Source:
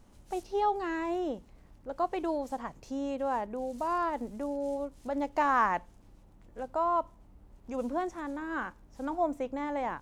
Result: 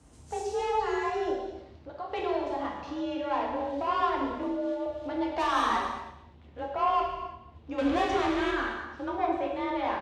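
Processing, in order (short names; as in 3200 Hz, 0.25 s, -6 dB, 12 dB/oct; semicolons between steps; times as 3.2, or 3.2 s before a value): 1.3–2.09 compressor 3:1, threshold -43 dBFS, peak gain reduction 13.5 dB; 4.43–4.86 steep high-pass 210 Hz 72 dB/oct; 7.78–8.51 power-law curve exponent 0.5; low-pass sweep 8700 Hz -> 3400 Hz, 0.02–2.06; soft clip -25.5 dBFS, distortion -13 dB; frequency shift +41 Hz; echo 0.231 s -16.5 dB; non-linear reverb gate 0.38 s falling, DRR -2 dB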